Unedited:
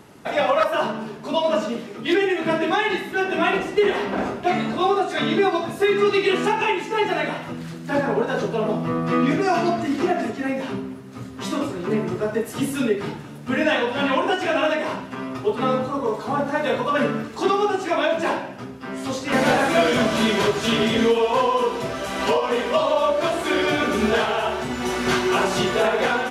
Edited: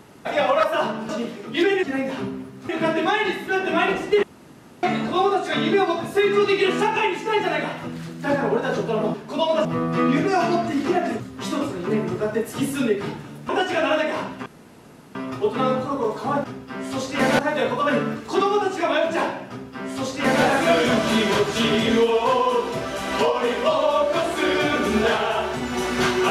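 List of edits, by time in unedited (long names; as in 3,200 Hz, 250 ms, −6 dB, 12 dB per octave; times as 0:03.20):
0:01.09–0:01.60: move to 0:08.79
0:03.88–0:04.48: fill with room tone
0:10.34–0:11.20: move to 0:02.34
0:13.49–0:14.21: remove
0:15.18: splice in room tone 0.69 s
0:18.57–0:19.52: duplicate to 0:16.47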